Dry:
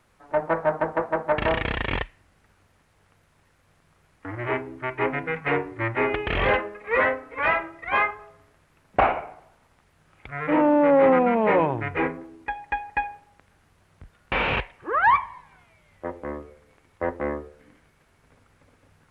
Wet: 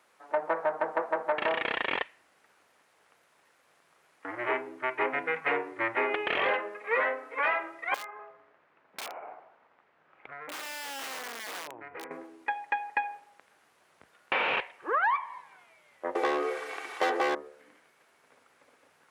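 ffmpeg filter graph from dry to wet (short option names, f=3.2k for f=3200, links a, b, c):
-filter_complex "[0:a]asettb=1/sr,asplit=3[a][b][c];[a]atrim=end=7.944[d];[b]atrim=start=7.94:end=12.11,asetpts=PTS-STARTPTS,afade=t=in:d=0.004:c=qsin,afade=t=out:st=4.166:d=0.004:c=qsin,lowpass=2.1k,aeval=exprs='(mod(5.62*val(0)+1,2)-1)/5.62':c=same,acompressor=threshold=-37dB:ratio=8:attack=3.2:release=140:knee=1:detection=peak[e];[c]atrim=start=12.106[f];[d][e]acrossfade=d=0.004:c1=hsin:c2=qsin[g];[g][f]acrossfade=d=0.004:c1=qsin:c2=hsin,asettb=1/sr,asplit=3[h][i][j];[h]atrim=end=16.154[k];[i]atrim=start=16.15:end=17.35,asetpts=PTS-STARTPTS,afade=t=in:d=0.004:c=qsin,afade=t=out:st=1.196:d=0.004:c=qsin,asplit=2[l][m];[m]highpass=f=720:p=1,volume=30dB,asoftclip=type=tanh:threshold=-13dB[n];[l][n]amix=inputs=2:normalize=0,lowpass=f=3.4k:p=1,volume=-6dB,aecho=1:1:2.6:0.65,atrim=end_sample=52920[o];[j]atrim=start=17.346[p];[k][o]acrossfade=d=0.004:c1=hsin:c2=qsin[q];[q][p]acrossfade=d=0.004:c1=qsin:c2=hsin,highpass=420,acompressor=threshold=-24dB:ratio=6"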